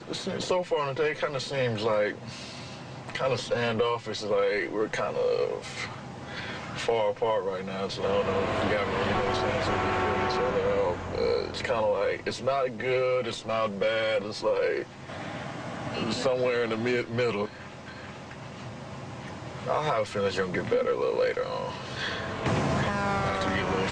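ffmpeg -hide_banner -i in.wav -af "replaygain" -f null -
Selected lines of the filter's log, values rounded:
track_gain = +9.7 dB
track_peak = 0.119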